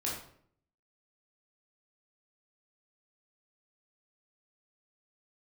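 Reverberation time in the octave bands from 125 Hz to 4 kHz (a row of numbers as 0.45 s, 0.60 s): 0.80 s, 0.75 s, 0.65 s, 0.55 s, 0.50 s, 0.45 s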